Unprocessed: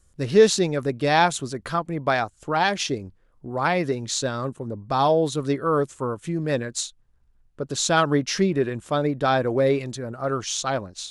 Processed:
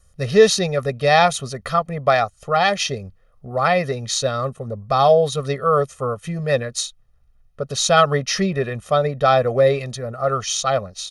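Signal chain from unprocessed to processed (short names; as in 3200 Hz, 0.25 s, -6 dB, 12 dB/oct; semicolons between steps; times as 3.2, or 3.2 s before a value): low shelf 160 Hz -3 dB; notch 7600 Hz, Q 5.7; comb 1.6 ms, depth 96%; gain +2 dB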